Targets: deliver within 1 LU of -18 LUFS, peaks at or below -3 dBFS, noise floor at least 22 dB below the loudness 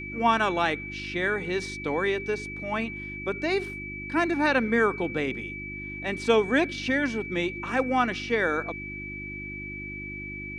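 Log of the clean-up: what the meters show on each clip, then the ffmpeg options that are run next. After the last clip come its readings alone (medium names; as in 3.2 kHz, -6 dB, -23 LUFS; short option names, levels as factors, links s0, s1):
hum 50 Hz; highest harmonic 350 Hz; hum level -38 dBFS; steady tone 2.3 kHz; tone level -36 dBFS; loudness -27.5 LUFS; peak level -9.5 dBFS; loudness target -18.0 LUFS
-> -af "bandreject=f=50:t=h:w=4,bandreject=f=100:t=h:w=4,bandreject=f=150:t=h:w=4,bandreject=f=200:t=h:w=4,bandreject=f=250:t=h:w=4,bandreject=f=300:t=h:w=4,bandreject=f=350:t=h:w=4"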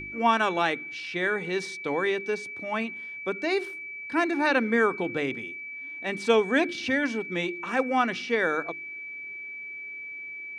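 hum not found; steady tone 2.3 kHz; tone level -36 dBFS
-> -af "bandreject=f=2300:w=30"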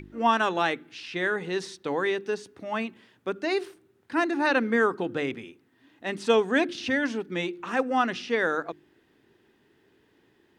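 steady tone not found; loudness -27.5 LUFS; peak level -9.5 dBFS; loudness target -18.0 LUFS
-> -af "volume=2.99,alimiter=limit=0.708:level=0:latency=1"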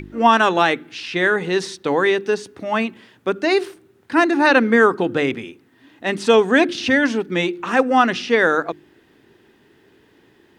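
loudness -18.0 LUFS; peak level -3.0 dBFS; noise floor -56 dBFS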